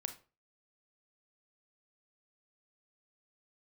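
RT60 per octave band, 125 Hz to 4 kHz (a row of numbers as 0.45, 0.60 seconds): 0.40, 0.35, 0.35, 0.35, 0.30, 0.25 seconds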